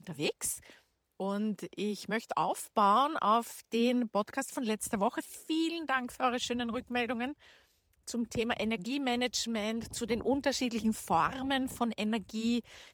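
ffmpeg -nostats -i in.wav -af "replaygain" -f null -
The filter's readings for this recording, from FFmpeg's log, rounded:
track_gain = +12.3 dB
track_peak = 0.143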